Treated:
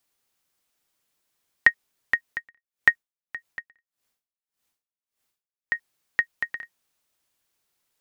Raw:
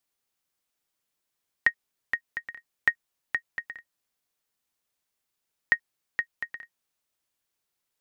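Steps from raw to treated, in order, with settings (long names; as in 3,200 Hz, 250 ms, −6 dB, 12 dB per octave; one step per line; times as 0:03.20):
0:02.31–0:05.75: tremolo with a sine in dB 1.7 Hz, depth 30 dB
level +6 dB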